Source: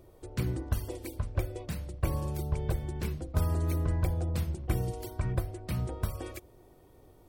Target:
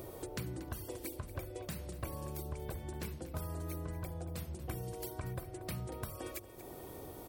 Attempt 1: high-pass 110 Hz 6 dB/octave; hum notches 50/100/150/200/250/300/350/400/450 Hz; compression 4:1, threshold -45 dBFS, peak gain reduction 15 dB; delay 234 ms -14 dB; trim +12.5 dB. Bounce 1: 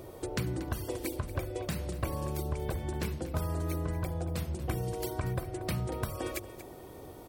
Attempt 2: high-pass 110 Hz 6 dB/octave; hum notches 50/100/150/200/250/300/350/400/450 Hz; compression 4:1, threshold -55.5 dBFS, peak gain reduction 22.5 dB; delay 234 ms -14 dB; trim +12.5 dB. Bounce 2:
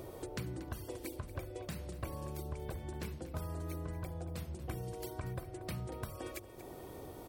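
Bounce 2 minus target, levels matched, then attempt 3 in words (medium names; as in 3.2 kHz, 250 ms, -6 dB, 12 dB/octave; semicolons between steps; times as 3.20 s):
8 kHz band -3.0 dB
high-pass 110 Hz 6 dB/octave; treble shelf 9.8 kHz +8.5 dB; hum notches 50/100/150/200/250/300/350/400/450 Hz; compression 4:1, threshold -55.5 dBFS, peak gain reduction 23 dB; delay 234 ms -14 dB; trim +12.5 dB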